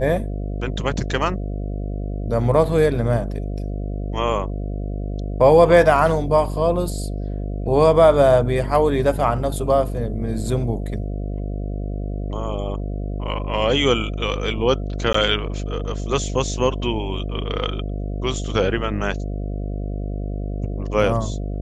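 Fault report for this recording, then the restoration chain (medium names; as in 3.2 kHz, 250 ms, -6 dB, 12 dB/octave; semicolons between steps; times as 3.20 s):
buzz 50 Hz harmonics 14 -26 dBFS
15.13–15.14 s: dropout 14 ms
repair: de-hum 50 Hz, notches 14; interpolate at 15.13 s, 14 ms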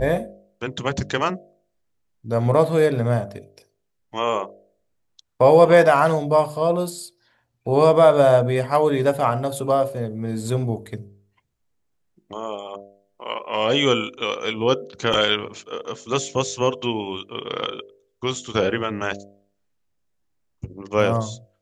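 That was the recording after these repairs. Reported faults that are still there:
nothing left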